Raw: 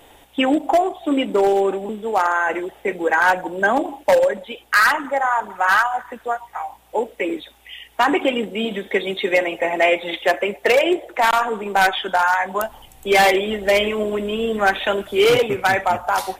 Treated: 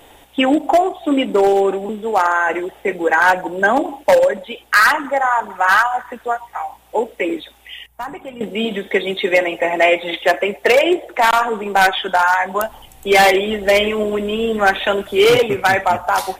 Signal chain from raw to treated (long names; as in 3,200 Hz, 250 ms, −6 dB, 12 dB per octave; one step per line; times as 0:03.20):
0:07.86–0:08.41: drawn EQ curve 150 Hz 0 dB, 300 Hz −19 dB, 890 Hz −12 dB, 2,100 Hz −18 dB, 3,100 Hz −21 dB, 14,000 Hz −6 dB
level +3 dB